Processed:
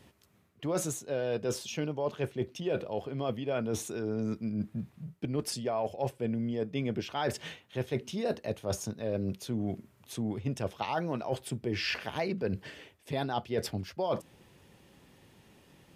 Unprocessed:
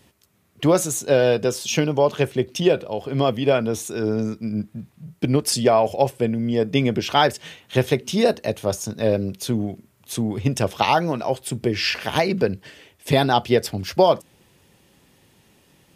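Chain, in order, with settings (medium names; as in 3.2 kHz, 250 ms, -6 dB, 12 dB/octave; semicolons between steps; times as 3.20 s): treble shelf 4.1 kHz -7 dB; reverse; compression 6:1, threshold -28 dBFS, peak gain reduction 16.5 dB; reverse; trim -1.5 dB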